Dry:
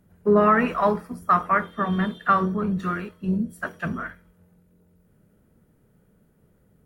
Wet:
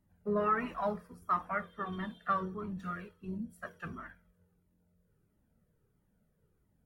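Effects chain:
flanger whose copies keep moving one way falling 1.5 Hz
level −8.5 dB

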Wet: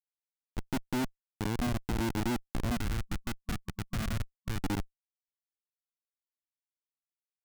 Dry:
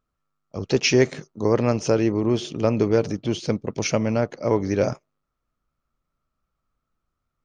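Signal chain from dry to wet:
formant resonators in series i
low-shelf EQ 410 Hz +2 dB
transient designer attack +6 dB, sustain +1 dB
comparator with hysteresis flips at −25 dBFS
gain on a spectral selection 0:02.76–0:04.59, 210–1,100 Hz −7 dB

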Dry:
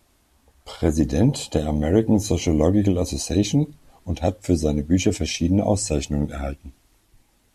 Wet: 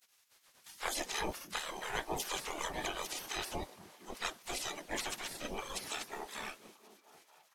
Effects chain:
gate on every frequency bin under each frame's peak −25 dB weak
pitch-shifted copies added −12 semitones −2 dB, +4 semitones −9 dB
echo through a band-pass that steps 233 ms, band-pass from 160 Hz, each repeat 0.7 octaves, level −9.5 dB
level +1 dB

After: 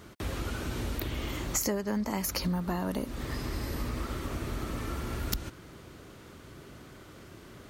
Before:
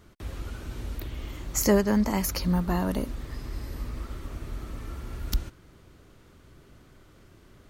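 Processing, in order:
high-pass filter 120 Hz 6 dB per octave
downward compressor 10 to 1, threshold −35 dBFS, peak gain reduction 18.5 dB
level +7.5 dB

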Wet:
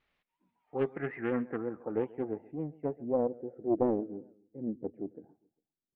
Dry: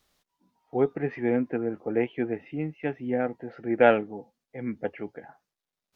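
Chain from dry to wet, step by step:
pitch vibrato 5.5 Hz 89 cents
low-pass filter sweep 2,400 Hz → 330 Hz, 0:00.63–0:03.93
repeating echo 135 ms, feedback 48%, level −22 dB
highs frequency-modulated by the lows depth 0.35 ms
level −7.5 dB

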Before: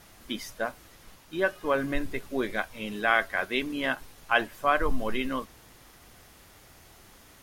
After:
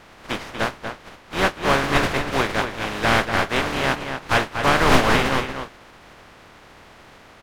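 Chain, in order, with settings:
compressing power law on the bin magnitudes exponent 0.24
RIAA equalisation playback
mid-hump overdrive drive 21 dB, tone 2,100 Hz, clips at −4 dBFS
slap from a distant wall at 41 metres, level −7 dB

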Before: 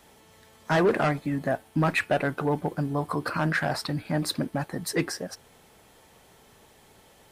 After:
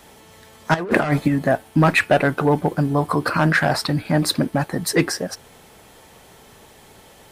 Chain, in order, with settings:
0:00.74–0:01.28: compressor whose output falls as the input rises −27 dBFS, ratio −0.5
level +8.5 dB

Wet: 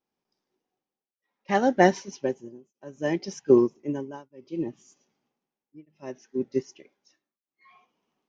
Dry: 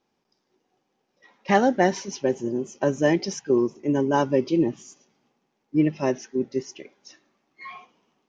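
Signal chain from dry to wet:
shaped tremolo triangle 0.64 Hz, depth 100%
expander for the loud parts 1.5 to 1, over −42 dBFS
level +4.5 dB

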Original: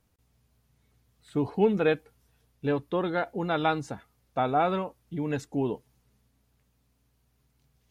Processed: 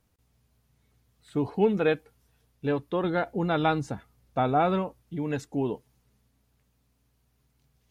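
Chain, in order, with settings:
0:03.04–0:05.02: low-shelf EQ 270 Hz +6.5 dB

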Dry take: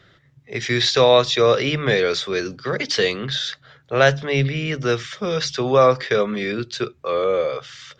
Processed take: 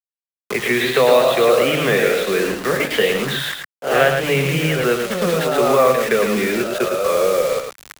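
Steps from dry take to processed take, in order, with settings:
elliptic band-pass filter 160–3,000 Hz, stop band 40 dB
in parallel at −2 dB: downward compressor 10 to 1, threshold −28 dBFS, peak gain reduction 18.5 dB
on the sum: bit reduction 5 bits
delay with pitch and tempo change per echo 177 ms, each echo +1 semitone, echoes 3, each echo −6 dB
on a send: single-tap delay 109 ms −6.5 dB
on the sum: multiband upward and downward compressor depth 40%

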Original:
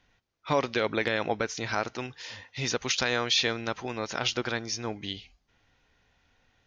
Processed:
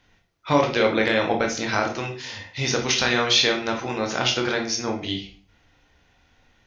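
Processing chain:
0:02.65–0:03.27: notch filter 7,100 Hz, Q 6.3
on a send: convolution reverb RT60 0.50 s, pre-delay 16 ms, DRR 1.5 dB
on the sum: level +4.5 dB

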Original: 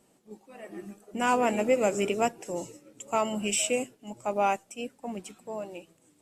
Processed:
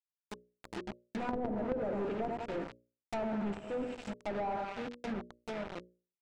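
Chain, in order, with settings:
adaptive Wiener filter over 41 samples
high-shelf EQ 6,600 Hz +11.5 dB
on a send: repeating echo 93 ms, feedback 55%, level −11 dB
on the sum: log-companded quantiser 2 bits
parametric band 12,000 Hz −12 dB 0.23 octaves
mains-hum notches 60/120/180/240/300/360/420/480/540/600 Hz
treble cut that deepens with the level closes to 540 Hz, closed at −21.5 dBFS
notch filter 1,100 Hz, Q 10
level −7.5 dB

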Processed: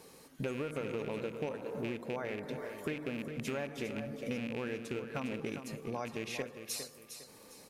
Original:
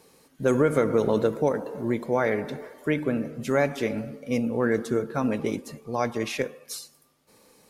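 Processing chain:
loose part that buzzes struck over −28 dBFS, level −20 dBFS
downward compressor 6 to 1, threshold −37 dBFS, peak gain reduction 19 dB
repeating echo 406 ms, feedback 33%, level −9.5 dB
level +1 dB

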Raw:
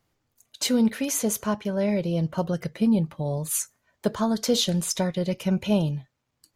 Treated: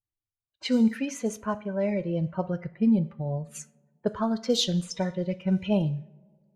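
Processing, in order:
spectral dynamics exaggerated over time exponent 1.5
coupled-rooms reverb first 0.57 s, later 2.7 s, from −21 dB, DRR 12.5 dB
low-pass that shuts in the quiet parts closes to 860 Hz, open at −19 dBFS

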